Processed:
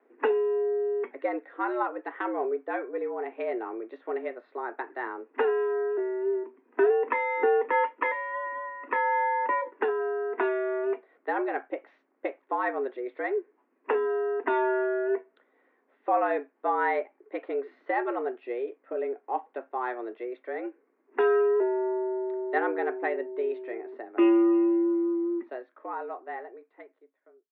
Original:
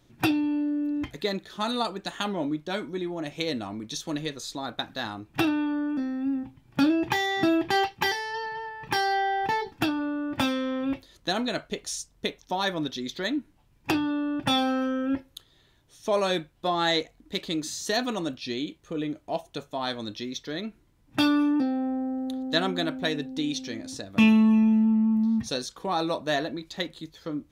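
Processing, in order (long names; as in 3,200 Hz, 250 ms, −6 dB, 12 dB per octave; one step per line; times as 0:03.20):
fade-out on the ending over 3.84 s
single-sideband voice off tune +120 Hz 170–2,000 Hz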